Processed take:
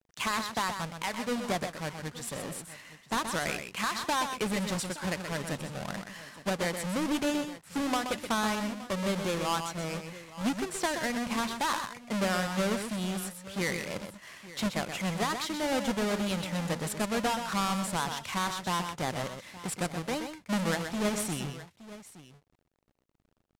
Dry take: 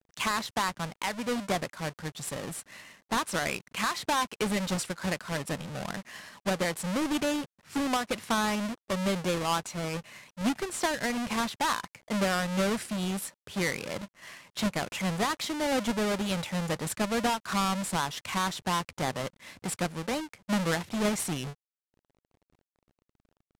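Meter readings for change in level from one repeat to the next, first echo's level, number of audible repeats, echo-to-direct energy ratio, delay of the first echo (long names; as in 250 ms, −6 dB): repeats not evenly spaced, −7.5 dB, 2, −7.0 dB, 126 ms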